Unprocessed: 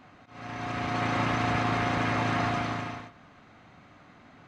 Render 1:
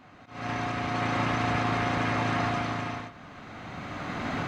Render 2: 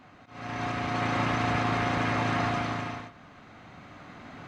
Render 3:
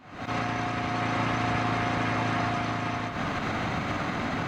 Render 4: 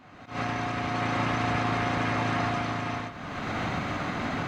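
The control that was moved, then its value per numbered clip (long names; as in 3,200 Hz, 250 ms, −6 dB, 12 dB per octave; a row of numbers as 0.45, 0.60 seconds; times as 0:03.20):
camcorder AGC, rising by: 14, 5.2, 84, 34 dB per second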